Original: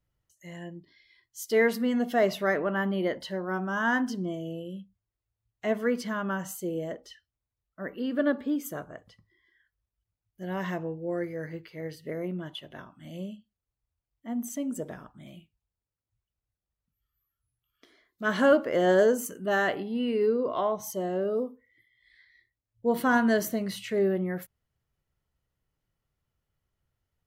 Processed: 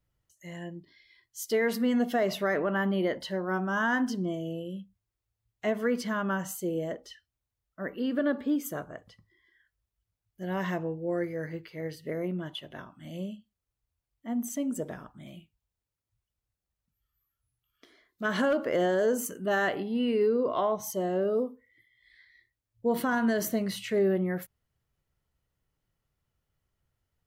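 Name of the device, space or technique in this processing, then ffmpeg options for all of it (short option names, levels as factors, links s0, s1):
clipper into limiter: -af "asoftclip=type=hard:threshold=0.251,alimiter=limit=0.106:level=0:latency=1:release=69,volume=1.12"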